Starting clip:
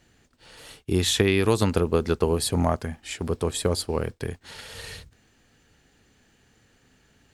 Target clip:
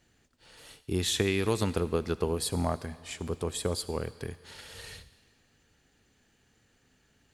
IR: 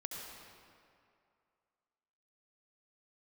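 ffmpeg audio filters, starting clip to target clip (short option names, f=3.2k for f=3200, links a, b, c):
-filter_complex "[0:a]asplit=2[a][b];[1:a]atrim=start_sample=2205,highshelf=f=2.1k:g=12[c];[b][c]afir=irnorm=-1:irlink=0,volume=-17dB[d];[a][d]amix=inputs=2:normalize=0,volume=-7.5dB"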